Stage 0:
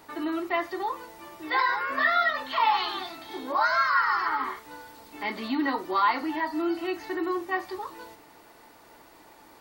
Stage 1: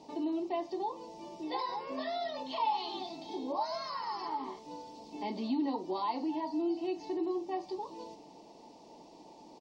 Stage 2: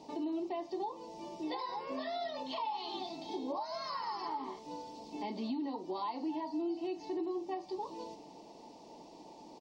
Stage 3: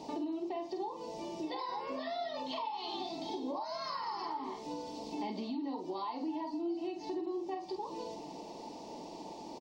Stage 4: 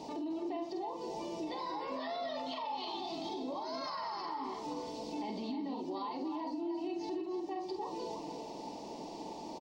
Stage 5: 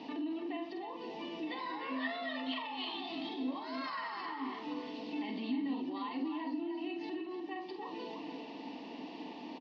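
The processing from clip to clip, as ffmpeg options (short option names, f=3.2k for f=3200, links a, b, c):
-af "firequalizer=gain_entry='entry(110,0);entry(170,14);entry(340,10);entry(910,8);entry(1400,-20);entry(2600,2);entry(3800,4);entry(5400,10);entry(12000,-21)':delay=0.05:min_phase=1,acompressor=threshold=-32dB:ratio=1.5,volume=-8.5dB"
-af "alimiter=level_in=6.5dB:limit=-24dB:level=0:latency=1:release=333,volume=-6.5dB,volume=1dB"
-filter_complex "[0:a]acompressor=threshold=-45dB:ratio=3,asplit=2[a][b];[b]adelay=47,volume=-8dB[c];[a][c]amix=inputs=2:normalize=0,volume=6.5dB"
-filter_complex "[0:a]alimiter=level_in=9.5dB:limit=-24dB:level=0:latency=1:release=14,volume=-9.5dB,asplit=2[a][b];[b]adelay=303.2,volume=-7dB,highshelf=f=4k:g=-6.82[c];[a][c]amix=inputs=2:normalize=0,volume=1dB"
-af "highpass=250,equalizer=f=260:t=q:w=4:g=8,equalizer=f=380:t=q:w=4:g=-7,equalizer=f=580:t=q:w=4:g=-10,equalizer=f=860:t=q:w=4:g=-7,equalizer=f=1.8k:t=q:w=4:g=9,equalizer=f=2.8k:t=q:w=4:g=7,lowpass=f=3.8k:w=0.5412,lowpass=f=3.8k:w=1.3066,volume=2dB"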